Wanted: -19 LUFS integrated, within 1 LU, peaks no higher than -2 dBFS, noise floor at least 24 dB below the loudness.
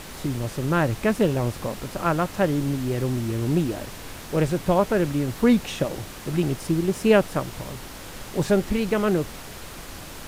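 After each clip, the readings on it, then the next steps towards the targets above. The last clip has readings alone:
noise floor -39 dBFS; noise floor target -48 dBFS; loudness -24.0 LUFS; peak level -4.0 dBFS; loudness target -19.0 LUFS
-> noise print and reduce 9 dB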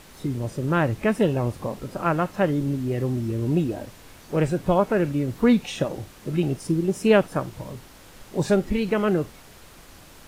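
noise floor -48 dBFS; loudness -24.0 LUFS; peak level -4.0 dBFS; loudness target -19.0 LUFS
-> trim +5 dB; peak limiter -2 dBFS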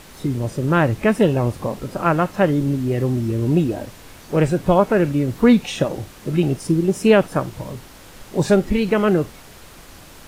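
loudness -19.0 LUFS; peak level -2.0 dBFS; noise floor -43 dBFS

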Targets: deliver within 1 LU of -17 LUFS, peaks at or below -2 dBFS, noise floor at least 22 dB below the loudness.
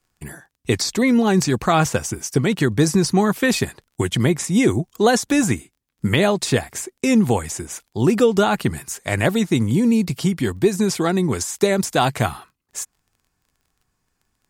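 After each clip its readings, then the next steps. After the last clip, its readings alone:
tick rate 16 per s; loudness -19.5 LUFS; peak level -3.5 dBFS; loudness target -17.0 LUFS
-> de-click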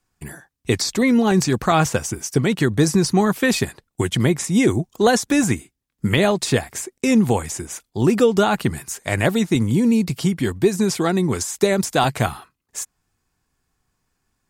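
tick rate 0.069 per s; loudness -19.5 LUFS; peak level -3.5 dBFS; loudness target -17.0 LUFS
-> trim +2.5 dB; peak limiter -2 dBFS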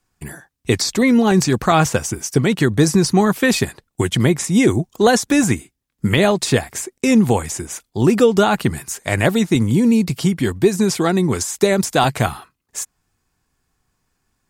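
loudness -17.0 LUFS; peak level -2.0 dBFS; noise floor -73 dBFS

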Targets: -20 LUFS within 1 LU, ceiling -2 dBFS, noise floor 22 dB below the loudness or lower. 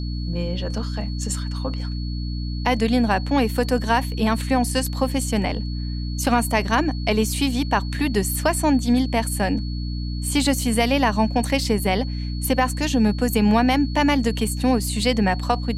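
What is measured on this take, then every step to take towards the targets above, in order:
hum 60 Hz; highest harmonic 300 Hz; hum level -24 dBFS; steady tone 4.4 kHz; tone level -39 dBFS; loudness -22.0 LUFS; peak level -4.5 dBFS; loudness target -20.0 LUFS
-> hum notches 60/120/180/240/300 Hz; band-stop 4.4 kHz, Q 30; trim +2 dB

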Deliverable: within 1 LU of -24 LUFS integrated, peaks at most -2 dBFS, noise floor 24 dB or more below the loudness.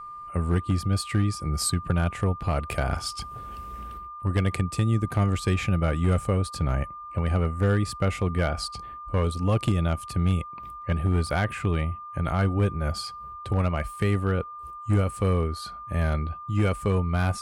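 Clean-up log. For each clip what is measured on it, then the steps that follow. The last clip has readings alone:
clipped samples 0.5%; clipping level -15.5 dBFS; steady tone 1.2 kHz; tone level -37 dBFS; loudness -26.5 LUFS; peak level -15.5 dBFS; loudness target -24.0 LUFS
-> clip repair -15.5 dBFS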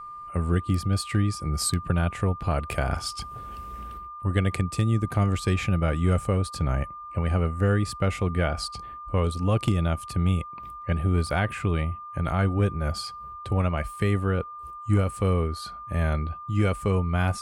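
clipped samples 0.0%; steady tone 1.2 kHz; tone level -37 dBFS
-> band-stop 1.2 kHz, Q 30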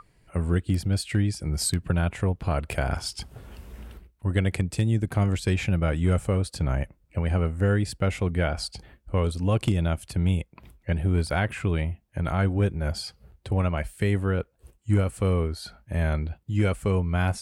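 steady tone not found; loudness -26.5 LUFS; peak level -9.5 dBFS; loudness target -24.0 LUFS
-> trim +2.5 dB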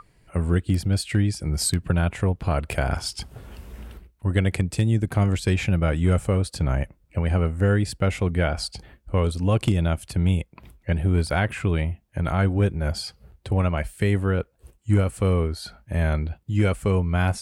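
loudness -24.0 LUFS; peak level -7.0 dBFS; noise floor -62 dBFS

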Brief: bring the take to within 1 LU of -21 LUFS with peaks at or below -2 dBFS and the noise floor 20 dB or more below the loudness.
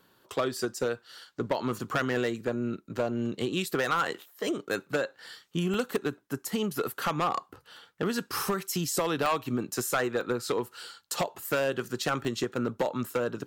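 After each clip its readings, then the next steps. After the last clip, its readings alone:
clipped samples 0.8%; clipping level -20.5 dBFS; dropouts 4; longest dropout 1.1 ms; loudness -31.0 LUFS; peak level -20.5 dBFS; loudness target -21.0 LUFS
-> clip repair -20.5 dBFS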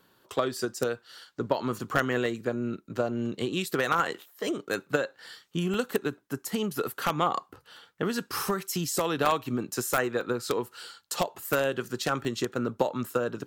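clipped samples 0.0%; dropouts 4; longest dropout 1.1 ms
-> interpolate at 5.74/9.26/10.21/12.25 s, 1.1 ms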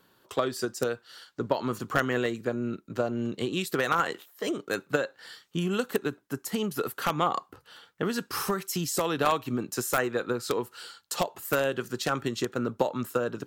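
dropouts 0; loudness -30.0 LUFS; peak level -11.5 dBFS; loudness target -21.0 LUFS
-> trim +9 dB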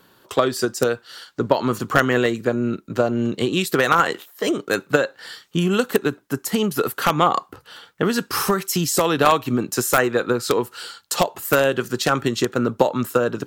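loudness -21.0 LUFS; peak level -2.5 dBFS; noise floor -57 dBFS

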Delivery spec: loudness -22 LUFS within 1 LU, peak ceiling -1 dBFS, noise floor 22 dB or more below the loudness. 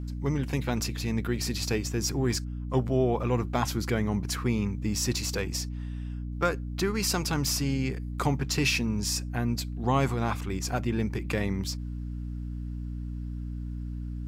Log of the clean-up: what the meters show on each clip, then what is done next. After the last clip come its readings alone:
hum 60 Hz; highest harmonic 300 Hz; hum level -32 dBFS; loudness -29.5 LUFS; peak level -12.5 dBFS; loudness target -22.0 LUFS
-> hum notches 60/120/180/240/300 Hz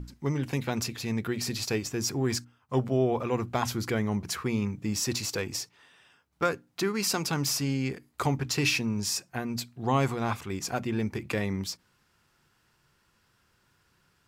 hum not found; loudness -30.0 LUFS; peak level -13.0 dBFS; loudness target -22.0 LUFS
-> trim +8 dB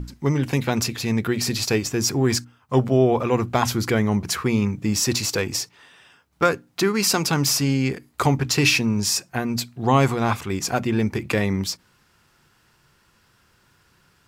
loudness -22.0 LUFS; peak level -5.0 dBFS; noise floor -61 dBFS

